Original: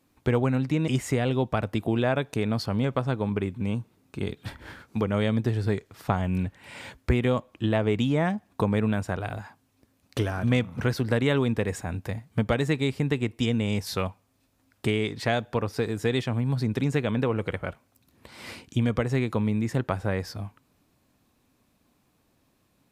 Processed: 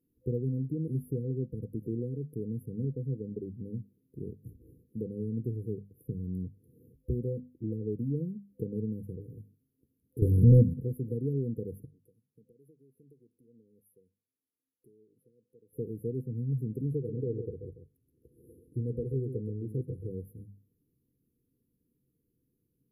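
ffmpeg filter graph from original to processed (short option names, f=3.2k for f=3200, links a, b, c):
-filter_complex "[0:a]asettb=1/sr,asplit=3[a][b][c];[a]atrim=end=10.224[d];[b]atrim=start=10.22:end=10.74,asetpts=PTS-STARTPTS,afade=t=in:d=0.004:c=qsin,afade=t=out:st=0.516:d=0.004:c=qsin,lowshelf=f=100:g=10.5,acontrast=64,aeval=exprs='0.531*sin(PI/2*1.58*val(0)/0.531)':c=same[e];[c]atrim=start=10.736[f];[d][e]acrossfade=d=0.004:c1=hsin:c2=qsin[g];[g][f]acrossfade=d=0.004:c1=qsin:c2=hsin,asettb=1/sr,asplit=3[h][i][j];[h]atrim=end=11.854[k];[i]atrim=start=11.85:end=15.73,asetpts=PTS-STARTPTS,afade=t=in:d=0.004:c=qsin,afade=t=out:st=3.876:d=0.004:c=qsin,bandpass=f=4k:t=q:w=0.52,acompressor=threshold=-47dB:ratio=2:attack=3.2:release=140:knee=1:detection=peak[l];[j]atrim=start=15.726[m];[k][l]acrossfade=d=0.004:c1=hsin:c2=qsin[n];[n][m]acrossfade=d=0.004:c1=qsin:c2=hsin,asettb=1/sr,asplit=3[o][p][q];[o]atrim=end=16.914[r];[p]atrim=start=16.91:end=20.1,asetpts=PTS-STARTPTS,afade=t=in:d=0.004:c=qsin,afade=t=out:st=3.186:d=0.004:c=qsin,lowpass=10k,aecho=1:1:2.4:0.46,atrim=end_sample=140679,aecho=1:1:134:0.376,atrim=end_sample=140679[s];[q]atrim=start=20.096[t];[r][s]acrossfade=d=0.004:c1=hsin:c2=qsin[u];[u][t]acrossfade=d=0.004:c1=qsin:c2=hsin,afftfilt=real='re*(1-between(b*sr/4096,510,10000))':imag='im*(1-between(b*sr/4096,510,10000))':win_size=4096:overlap=0.75,equalizer=f=140:w=5.1:g=6.5,bandreject=f=50:t=h:w=6,bandreject=f=100:t=h:w=6,bandreject=f=150:t=h:w=6,bandreject=f=200:t=h:w=6,bandreject=f=250:t=h:w=6,volume=-9dB"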